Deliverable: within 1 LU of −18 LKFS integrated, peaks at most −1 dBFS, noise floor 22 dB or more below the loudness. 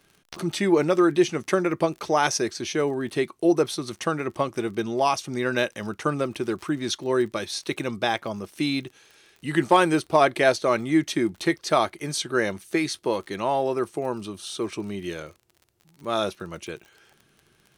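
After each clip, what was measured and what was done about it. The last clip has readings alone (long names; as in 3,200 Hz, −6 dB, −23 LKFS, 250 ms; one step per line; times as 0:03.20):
crackle rate 35 per second; integrated loudness −25.0 LKFS; sample peak −6.0 dBFS; target loudness −18.0 LKFS
→ click removal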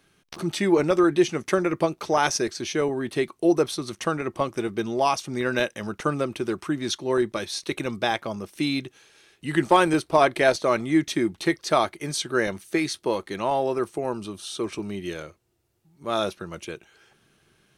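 crackle rate 0.056 per second; integrated loudness −25.0 LKFS; sample peak −6.0 dBFS; target loudness −18.0 LKFS
→ level +7 dB
brickwall limiter −1 dBFS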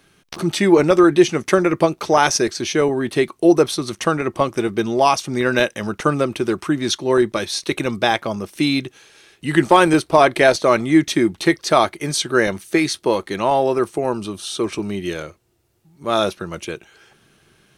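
integrated loudness −18.0 LKFS; sample peak −1.0 dBFS; background noise floor −58 dBFS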